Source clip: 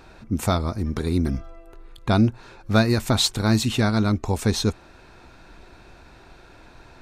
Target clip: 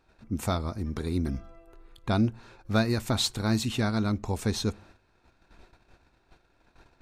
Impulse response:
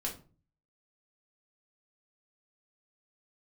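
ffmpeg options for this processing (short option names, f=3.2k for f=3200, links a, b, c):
-filter_complex "[0:a]agate=range=-13dB:threshold=-45dB:ratio=16:detection=peak,asplit=2[a][b];[1:a]atrim=start_sample=2205[c];[b][c]afir=irnorm=-1:irlink=0,volume=-23dB[d];[a][d]amix=inputs=2:normalize=0,volume=-7dB"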